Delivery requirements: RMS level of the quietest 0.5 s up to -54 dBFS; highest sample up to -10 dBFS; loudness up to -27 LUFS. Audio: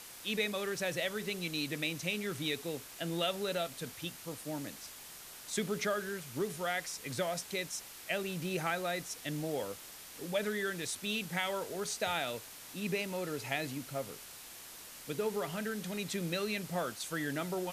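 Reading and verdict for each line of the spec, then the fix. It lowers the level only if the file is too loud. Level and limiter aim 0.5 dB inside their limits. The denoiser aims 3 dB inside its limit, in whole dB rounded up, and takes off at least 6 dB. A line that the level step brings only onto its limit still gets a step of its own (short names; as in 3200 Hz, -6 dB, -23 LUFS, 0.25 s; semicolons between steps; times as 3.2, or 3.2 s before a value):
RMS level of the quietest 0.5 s -50 dBFS: fail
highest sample -19.0 dBFS: OK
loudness -36.5 LUFS: OK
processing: denoiser 7 dB, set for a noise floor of -50 dBFS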